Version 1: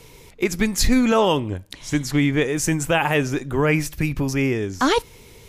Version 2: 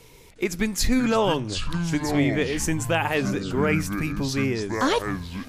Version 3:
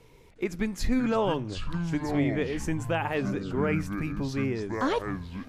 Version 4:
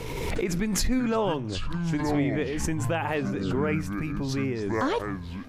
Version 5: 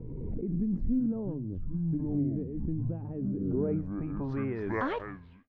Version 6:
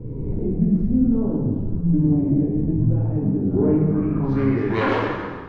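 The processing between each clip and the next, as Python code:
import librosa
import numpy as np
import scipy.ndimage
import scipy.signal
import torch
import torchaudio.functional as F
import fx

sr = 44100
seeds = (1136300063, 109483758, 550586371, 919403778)

y1 = fx.echo_pitch(x, sr, ms=358, semitones=-7, count=2, db_per_echo=-6.0)
y1 = fx.hum_notches(y1, sr, base_hz=50, count=3)
y1 = y1 * 10.0 ** (-4.0 / 20.0)
y2 = fx.high_shelf(y1, sr, hz=3300.0, db=-12.0)
y2 = y2 * 10.0 ** (-4.0 / 20.0)
y3 = fx.pre_swell(y2, sr, db_per_s=26.0)
y4 = fx.fade_out_tail(y3, sr, length_s=0.73)
y4 = fx.filter_sweep_lowpass(y4, sr, from_hz=250.0, to_hz=2300.0, start_s=3.28, end_s=4.79, q=1.3)
y4 = y4 * 10.0 ** (-4.5 / 20.0)
y5 = fx.self_delay(y4, sr, depth_ms=0.12)
y5 = fx.rev_plate(y5, sr, seeds[0], rt60_s=1.6, hf_ratio=0.8, predelay_ms=0, drr_db=-5.0)
y5 = y5 * 10.0 ** (5.5 / 20.0)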